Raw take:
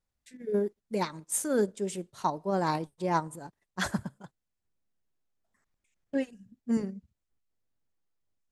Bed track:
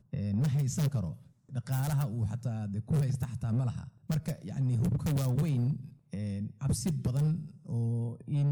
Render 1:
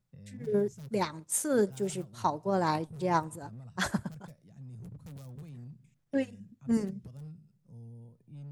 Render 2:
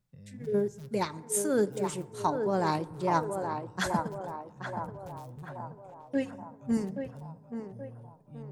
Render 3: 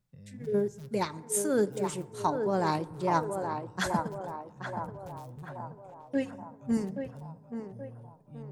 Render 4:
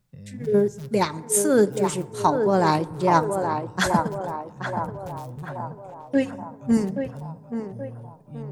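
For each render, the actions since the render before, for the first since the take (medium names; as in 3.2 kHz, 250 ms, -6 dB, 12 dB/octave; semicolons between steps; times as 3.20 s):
add bed track -17 dB
band-passed feedback delay 827 ms, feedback 58%, band-pass 700 Hz, level -4 dB; FDN reverb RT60 1.6 s, high-frequency decay 0.35×, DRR 18.5 dB
no audible change
trim +8.5 dB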